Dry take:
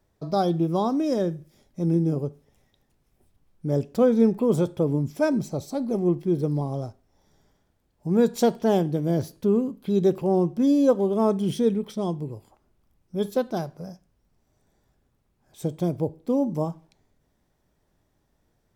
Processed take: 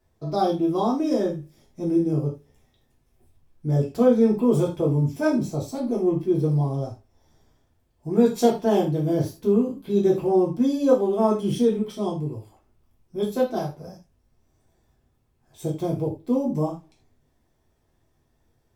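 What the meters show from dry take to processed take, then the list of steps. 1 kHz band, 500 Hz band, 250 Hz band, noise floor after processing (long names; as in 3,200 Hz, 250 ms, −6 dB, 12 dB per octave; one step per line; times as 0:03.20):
+2.0 dB, +1.5 dB, +1.0 dB, −68 dBFS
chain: reverb whose tail is shaped and stops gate 120 ms falling, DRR −3.5 dB
level −4 dB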